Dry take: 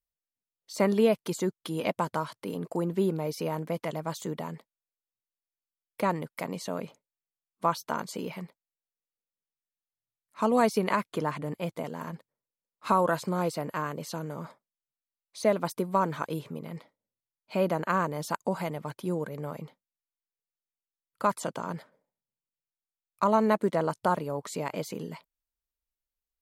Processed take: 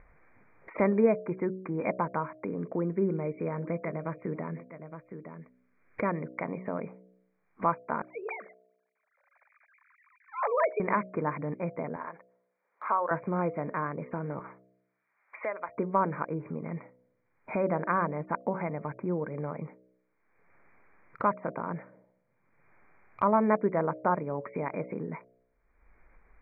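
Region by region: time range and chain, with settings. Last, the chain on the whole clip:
0:02.47–0:06.38: parametric band 840 Hz −7.5 dB 0.5 octaves + single-tap delay 865 ms −22 dB
0:08.02–0:10.80: three sine waves on the formant tracks + high-pass filter 520 Hz 24 dB per octave
0:11.96–0:13.11: high-pass filter 640 Hz + high-frequency loss of the air 350 metres
0:14.39–0:15.69: high-pass filter 1,100 Hz + spectral tilt −1.5 dB per octave
whole clip: Chebyshev low-pass filter 2,400 Hz, order 10; hum removal 62.46 Hz, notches 11; upward compression, threshold −29 dBFS

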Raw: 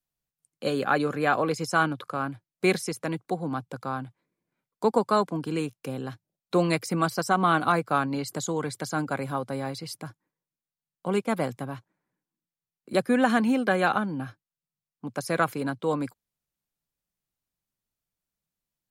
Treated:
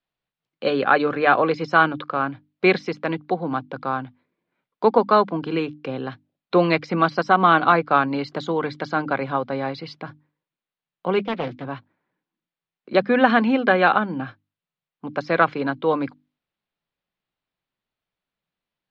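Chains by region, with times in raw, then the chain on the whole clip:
0:11.19–0:11.65: parametric band 930 Hz −9.5 dB 1.4 octaves + notch comb filter 200 Hz + highs frequency-modulated by the lows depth 0.5 ms
whole clip: inverse Chebyshev low-pass filter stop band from 8,900 Hz, stop band 50 dB; low-shelf EQ 160 Hz −10.5 dB; mains-hum notches 50/100/150/200/250/300 Hz; level +7.5 dB

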